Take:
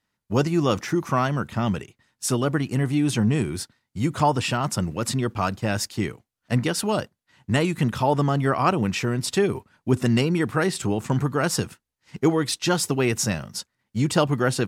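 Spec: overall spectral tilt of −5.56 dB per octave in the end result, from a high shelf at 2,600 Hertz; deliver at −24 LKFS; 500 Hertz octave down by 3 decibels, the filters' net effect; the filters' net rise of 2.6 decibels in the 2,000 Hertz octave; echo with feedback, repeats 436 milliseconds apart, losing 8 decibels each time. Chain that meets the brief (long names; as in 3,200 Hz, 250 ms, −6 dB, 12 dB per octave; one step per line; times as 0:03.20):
parametric band 500 Hz −4 dB
parametric band 2,000 Hz +7.5 dB
high-shelf EQ 2,600 Hz −8.5 dB
repeating echo 436 ms, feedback 40%, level −8 dB
level +0.5 dB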